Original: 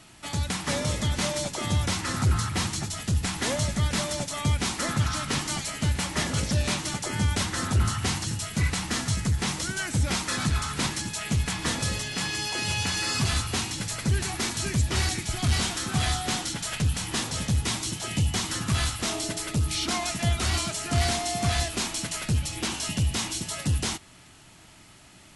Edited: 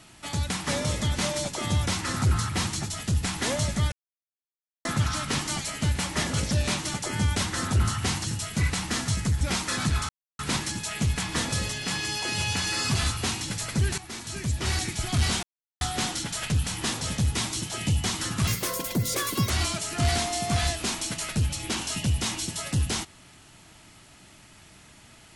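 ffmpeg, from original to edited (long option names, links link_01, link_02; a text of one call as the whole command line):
ffmpeg -i in.wav -filter_complex "[0:a]asplit=10[link_01][link_02][link_03][link_04][link_05][link_06][link_07][link_08][link_09][link_10];[link_01]atrim=end=3.92,asetpts=PTS-STARTPTS,afade=type=out:start_time=3.916:duration=0.004:curve=hsin[link_11];[link_02]atrim=start=3.92:end=4.85,asetpts=PTS-STARTPTS,volume=0[link_12];[link_03]atrim=start=4.85:end=9.412,asetpts=PTS-STARTPTS,afade=type=in:duration=0.004:curve=hsin[link_13];[link_04]atrim=start=10.008:end=10.69,asetpts=PTS-STARTPTS,afade=type=out:start_time=0.678:duration=0.004:curve=hsin,apad=pad_dur=0.3[link_14];[link_05]atrim=start=10.69:end=14.28,asetpts=PTS-STARTPTS,afade=type=in:duration=0.004:curve=hsin,afade=type=out:start_time=3.586:duration=0.004:curve=hsin:silence=0.223872[link_15];[link_06]atrim=start=14.28:end=15.73,asetpts=PTS-STARTPTS,afade=type=in:duration=0.93:silence=0.223872,afade=type=out:start_time=1.446:duration=0.004:curve=hsin[link_16];[link_07]atrim=start=15.73:end=16.11,asetpts=PTS-STARTPTS,volume=0[link_17];[link_08]atrim=start=16.11:end=18.774,asetpts=PTS-STARTPTS,afade=type=in:duration=0.004:curve=hsin[link_18];[link_09]atrim=start=18.77:end=20.43,asetpts=PTS-STARTPTS,asetrate=71001,aresample=44100[link_19];[link_10]atrim=start=20.426[link_20];[link_11][link_12][link_13]concat=n=3:v=0:a=1[link_21];[link_14][link_15][link_16][link_17][link_18]concat=n=5:v=0:a=1[link_22];[link_21][link_22]acrossfade=duration=0.004:curve1=hsin:curve2=hsin[link_23];[link_23][link_19]acrossfade=duration=0.004:curve1=hsin:curve2=hsin[link_24];[link_24][link_20]acrossfade=duration=0.004:curve1=hsin:curve2=hsin" out.wav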